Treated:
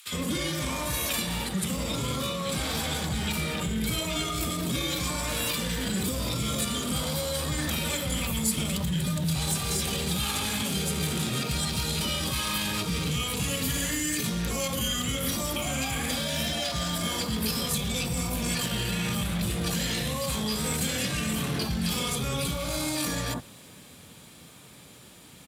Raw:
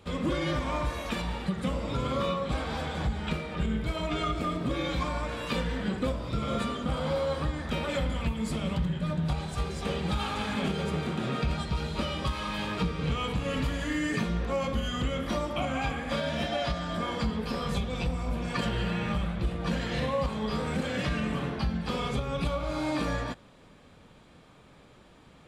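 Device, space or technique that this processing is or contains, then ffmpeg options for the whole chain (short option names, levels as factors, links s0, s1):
FM broadcast chain: -filter_complex "[0:a]highpass=69,dynaudnorm=f=440:g=17:m=2.24,acrossover=split=110|3900[s0][s1][s2];[s0]acompressor=threshold=0.0282:ratio=4[s3];[s1]acompressor=threshold=0.0398:ratio=4[s4];[s2]acompressor=threshold=0.00891:ratio=4[s5];[s3][s4][s5]amix=inputs=3:normalize=0,aemphasis=mode=production:type=50fm,alimiter=level_in=1.26:limit=0.0631:level=0:latency=1:release=10,volume=0.794,asoftclip=type=hard:threshold=0.0398,highpass=59,lowpass=f=15000:w=0.5412,lowpass=f=15000:w=1.3066,aemphasis=mode=production:type=50fm,equalizer=f=570:t=o:w=1.9:g=-4.5,highshelf=f=5200:g=-6.5,acrossover=split=1300[s6][s7];[s6]adelay=60[s8];[s8][s7]amix=inputs=2:normalize=0,volume=2.11"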